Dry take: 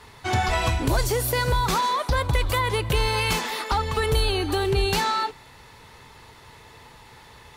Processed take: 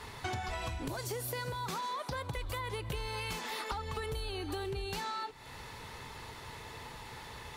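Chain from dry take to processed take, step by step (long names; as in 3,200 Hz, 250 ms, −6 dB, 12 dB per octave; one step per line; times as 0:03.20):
0:00.88–0:02.37: high-pass filter 87 Hz 24 dB per octave
downward compressor 12 to 1, threshold −36 dBFS, peak gain reduction 18.5 dB
level +1 dB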